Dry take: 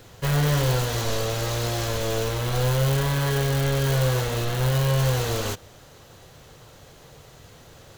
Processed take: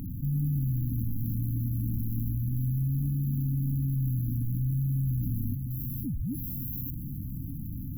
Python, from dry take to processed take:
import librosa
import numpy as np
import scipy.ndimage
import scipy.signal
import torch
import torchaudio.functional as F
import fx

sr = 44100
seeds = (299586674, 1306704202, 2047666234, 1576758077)

y = fx.high_shelf(x, sr, hz=6200.0, db=10.5)
y = fx.spec_paint(y, sr, seeds[0], shape='fall', start_s=5.7, length_s=1.21, low_hz=830.0, high_hz=3300.0, level_db=-33.0)
y = fx.sample_hold(y, sr, seeds[1], rate_hz=1900.0, jitter_pct=0)
y = fx.brickwall_bandstop(y, sr, low_hz=300.0, high_hz=11000.0)
y = fx.echo_feedback(y, sr, ms=552, feedback_pct=52, wet_db=-20.0)
y = fx.env_flatten(y, sr, amount_pct=70)
y = F.gain(torch.from_numpy(y), -7.0).numpy()